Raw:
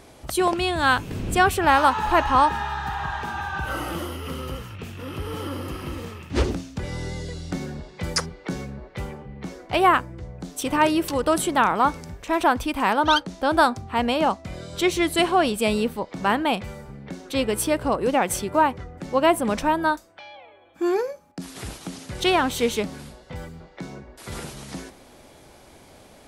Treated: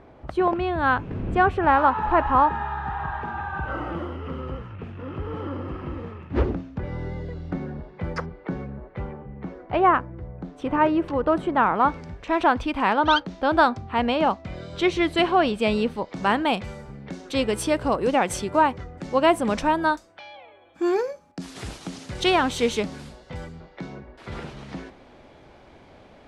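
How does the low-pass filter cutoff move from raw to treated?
0:11.52 1,600 Hz
0:12.14 3,700 Hz
0:15.58 3,700 Hz
0:16.26 7,400 Hz
0:23.36 7,400 Hz
0:24.13 3,000 Hz

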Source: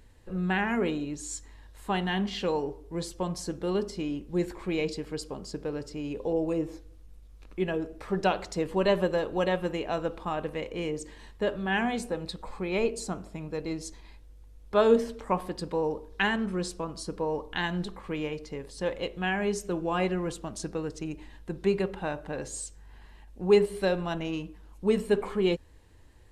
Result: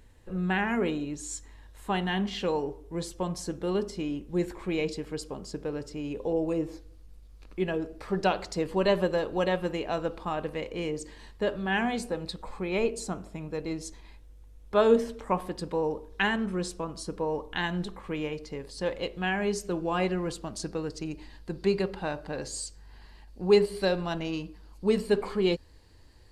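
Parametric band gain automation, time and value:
parametric band 4,600 Hz 0.24 octaves
0:06.33 −2.5 dB
0:06.74 +5.5 dB
0:12.10 +5.5 dB
0:12.57 −2 dB
0:18.22 −2 dB
0:18.66 +7.5 dB
0:20.66 +7.5 dB
0:21.19 +14.5 dB

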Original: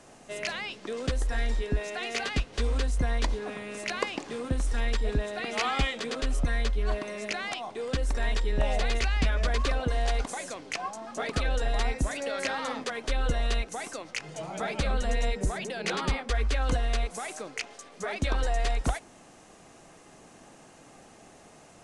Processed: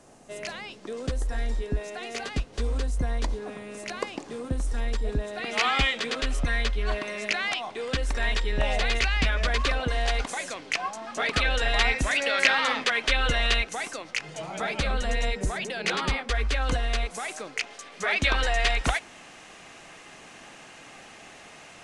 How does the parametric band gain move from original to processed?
parametric band 2,500 Hz 2.3 octaves
0:05.22 −4.5 dB
0:05.65 +7.5 dB
0:10.95 +7.5 dB
0:11.73 +14.5 dB
0:13.44 +14.5 dB
0:13.95 +5.5 dB
0:17.64 +5.5 dB
0:18.11 +13.5 dB

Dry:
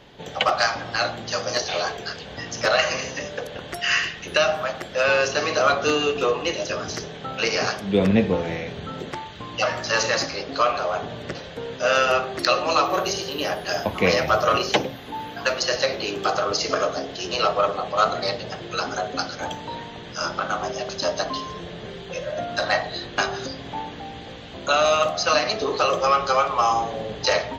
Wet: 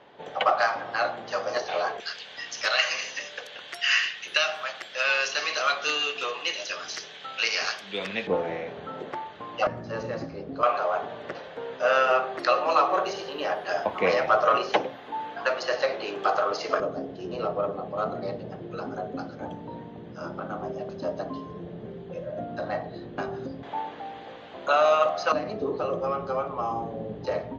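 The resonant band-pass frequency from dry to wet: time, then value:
resonant band-pass, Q 0.74
850 Hz
from 0:02.00 3,000 Hz
from 0:08.27 760 Hz
from 0:09.67 180 Hz
from 0:10.63 890 Hz
from 0:16.80 230 Hz
from 0:23.63 840 Hz
from 0:25.32 210 Hz

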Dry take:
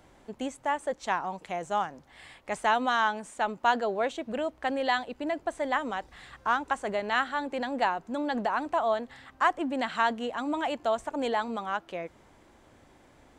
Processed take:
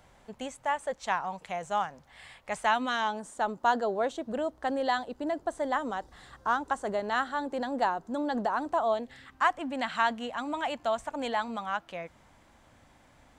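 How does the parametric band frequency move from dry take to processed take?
parametric band −10 dB 0.73 octaves
0:02.65 320 Hz
0:03.18 2,400 Hz
0:08.82 2,400 Hz
0:09.50 380 Hz

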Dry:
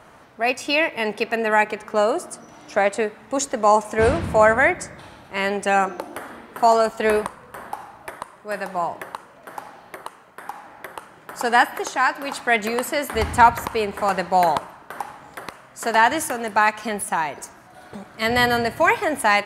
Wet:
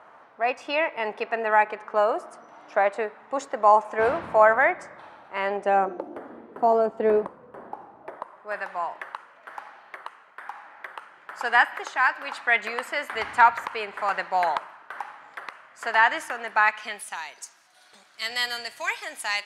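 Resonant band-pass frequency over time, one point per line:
resonant band-pass, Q 0.98
0:05.36 1,000 Hz
0:06.04 370 Hz
0:07.95 370 Hz
0:08.69 1,700 Hz
0:16.66 1,700 Hz
0:17.22 5,000 Hz

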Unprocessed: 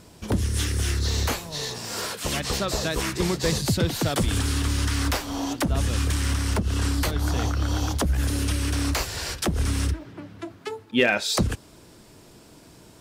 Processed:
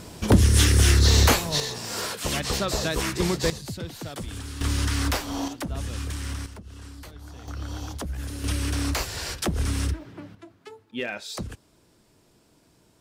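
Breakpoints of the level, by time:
+7.5 dB
from 0:01.60 0 dB
from 0:03.50 −11.5 dB
from 0:04.61 −0.5 dB
from 0:05.48 −7.5 dB
from 0:06.46 −18 dB
from 0:07.48 −9 dB
from 0:08.44 −1.5 dB
from 0:10.35 −11 dB

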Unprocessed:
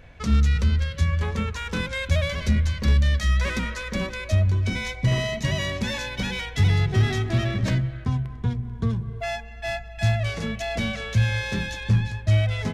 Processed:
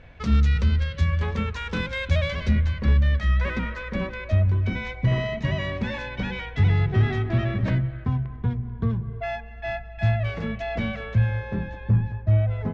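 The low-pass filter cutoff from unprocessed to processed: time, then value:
0:02.27 4,300 Hz
0:02.84 2,300 Hz
0:10.91 2,300 Hz
0:11.44 1,100 Hz

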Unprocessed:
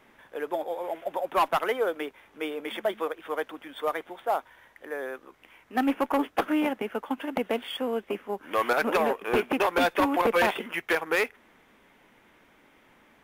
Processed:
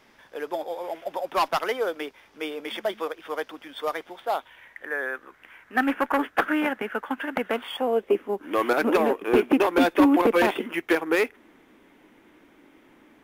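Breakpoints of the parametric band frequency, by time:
parametric band +11.5 dB 0.76 octaves
0:04.19 5,000 Hz
0:04.87 1,600 Hz
0:07.48 1,600 Hz
0:08.23 310 Hz

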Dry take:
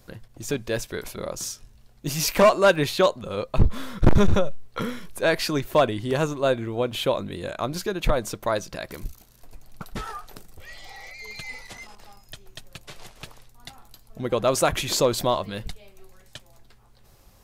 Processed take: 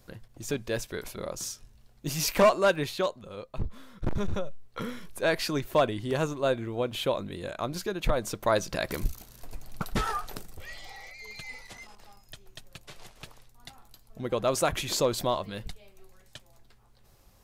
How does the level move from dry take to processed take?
0:02.44 −4 dB
0:03.85 −16 dB
0:05.03 −4.5 dB
0:08.12 −4.5 dB
0:08.90 +4.5 dB
0:10.27 +4.5 dB
0:11.14 −5 dB

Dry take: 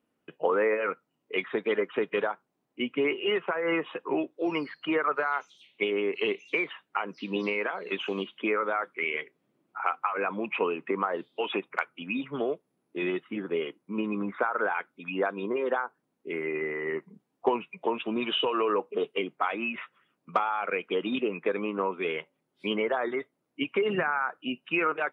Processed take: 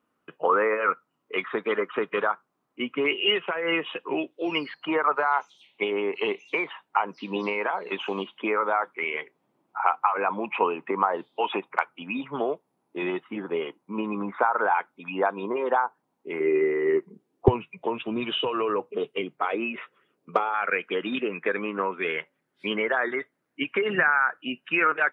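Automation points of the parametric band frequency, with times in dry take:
parametric band +11 dB
1,200 Hz
from 0:03.06 3,000 Hz
from 0:04.74 890 Hz
from 0:16.40 370 Hz
from 0:17.48 110 Hz
from 0:19.42 430 Hz
from 0:20.54 1,700 Hz

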